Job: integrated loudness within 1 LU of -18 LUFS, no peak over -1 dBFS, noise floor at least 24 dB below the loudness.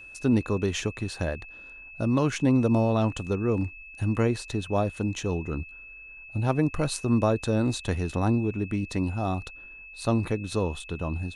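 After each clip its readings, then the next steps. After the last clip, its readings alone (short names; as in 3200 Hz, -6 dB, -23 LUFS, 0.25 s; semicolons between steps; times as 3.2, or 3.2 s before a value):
steady tone 2600 Hz; tone level -43 dBFS; loudness -27.0 LUFS; peak -10.0 dBFS; loudness target -18.0 LUFS
-> notch 2600 Hz, Q 30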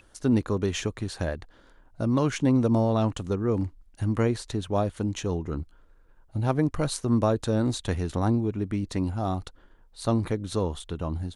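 steady tone none; loudness -27.5 LUFS; peak -9.5 dBFS; loudness target -18.0 LUFS
-> gain +9.5 dB; limiter -1 dBFS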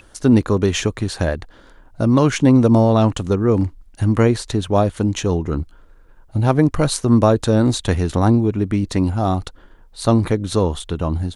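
loudness -18.0 LUFS; peak -1.0 dBFS; noise floor -48 dBFS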